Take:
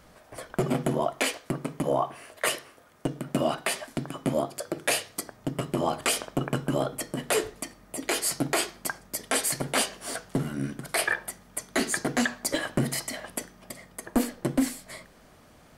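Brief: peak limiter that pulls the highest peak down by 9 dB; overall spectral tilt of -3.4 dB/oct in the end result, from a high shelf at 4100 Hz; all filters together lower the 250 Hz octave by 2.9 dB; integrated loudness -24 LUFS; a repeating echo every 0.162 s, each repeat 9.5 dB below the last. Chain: bell 250 Hz -3.5 dB; high shelf 4100 Hz +6 dB; limiter -17 dBFS; feedback echo 0.162 s, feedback 33%, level -9.5 dB; gain +6.5 dB

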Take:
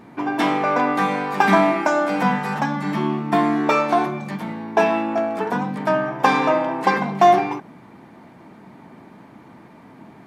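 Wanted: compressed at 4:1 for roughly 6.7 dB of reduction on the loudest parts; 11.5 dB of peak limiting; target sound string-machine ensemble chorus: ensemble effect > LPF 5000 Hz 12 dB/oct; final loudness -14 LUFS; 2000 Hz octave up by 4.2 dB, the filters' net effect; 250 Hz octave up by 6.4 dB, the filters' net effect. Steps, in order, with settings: bell 250 Hz +8 dB; bell 2000 Hz +5.5 dB; compressor 4:1, threshold -15 dBFS; limiter -14.5 dBFS; ensemble effect; LPF 5000 Hz 12 dB/oct; gain +12 dB

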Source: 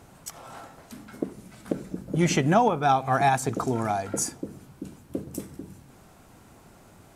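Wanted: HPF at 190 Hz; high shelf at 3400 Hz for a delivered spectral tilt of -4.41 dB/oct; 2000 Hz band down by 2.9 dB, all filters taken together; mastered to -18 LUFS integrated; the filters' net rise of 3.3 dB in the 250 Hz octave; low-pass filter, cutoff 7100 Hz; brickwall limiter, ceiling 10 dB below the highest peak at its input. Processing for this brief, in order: HPF 190 Hz; LPF 7100 Hz; bell 250 Hz +6.5 dB; bell 2000 Hz -6.5 dB; high shelf 3400 Hz +8.5 dB; gain +11.5 dB; limiter -5.5 dBFS

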